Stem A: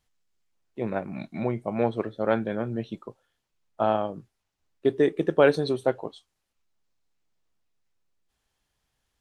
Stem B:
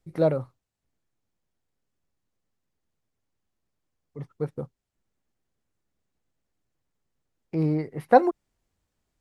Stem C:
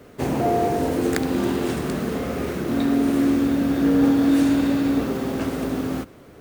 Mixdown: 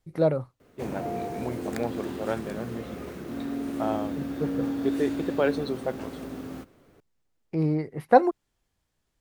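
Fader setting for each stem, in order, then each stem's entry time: -6.0 dB, -0.5 dB, -12.0 dB; 0.00 s, 0.00 s, 0.60 s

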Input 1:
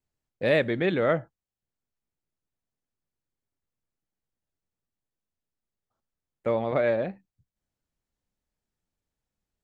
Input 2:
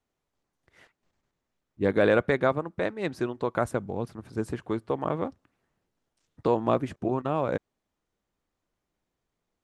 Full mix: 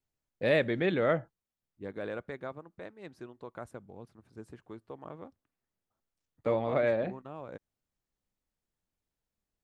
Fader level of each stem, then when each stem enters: -3.5 dB, -16.5 dB; 0.00 s, 0.00 s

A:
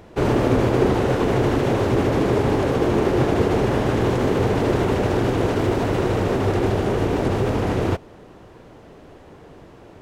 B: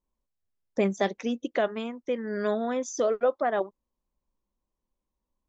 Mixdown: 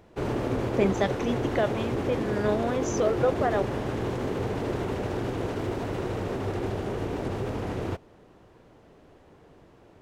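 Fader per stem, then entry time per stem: -10.0 dB, 0.0 dB; 0.00 s, 0.00 s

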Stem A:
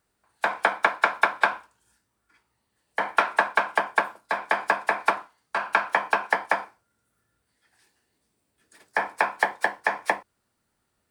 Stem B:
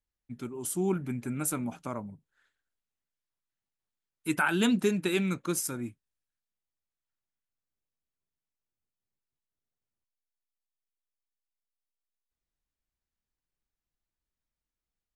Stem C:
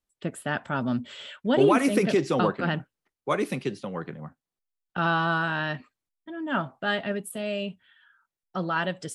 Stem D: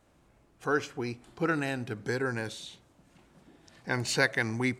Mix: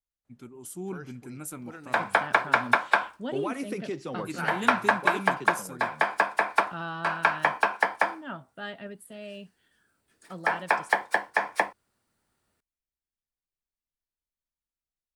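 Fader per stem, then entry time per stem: -1.0 dB, -7.5 dB, -11.0 dB, -16.5 dB; 1.50 s, 0.00 s, 1.75 s, 0.25 s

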